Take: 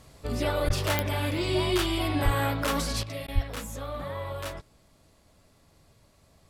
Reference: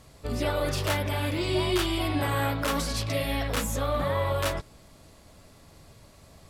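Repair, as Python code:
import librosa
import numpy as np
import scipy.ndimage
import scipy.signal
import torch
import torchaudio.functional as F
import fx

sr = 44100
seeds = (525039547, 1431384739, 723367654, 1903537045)

y = fx.fix_declick_ar(x, sr, threshold=10.0)
y = fx.fix_deplosive(y, sr, at_s=(0.66, 2.24, 3.34))
y = fx.fix_interpolate(y, sr, at_s=(0.69, 3.27), length_ms=10.0)
y = fx.gain(y, sr, db=fx.steps((0.0, 0.0), (3.03, 8.0)))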